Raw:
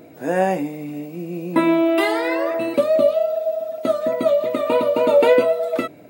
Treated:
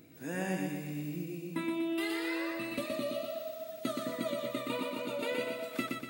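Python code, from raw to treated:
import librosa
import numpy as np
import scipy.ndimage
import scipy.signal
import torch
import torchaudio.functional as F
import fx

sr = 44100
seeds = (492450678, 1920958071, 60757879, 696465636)

p1 = fx.tone_stack(x, sr, knobs='6-0-2')
p2 = fx.rider(p1, sr, range_db=5, speed_s=0.5)
p3 = fx.low_shelf(p2, sr, hz=140.0, db=-5.0)
p4 = p3 + fx.echo_feedback(p3, sr, ms=121, feedback_pct=51, wet_db=-3.5, dry=0)
y = F.gain(torch.from_numpy(p4), 7.0).numpy()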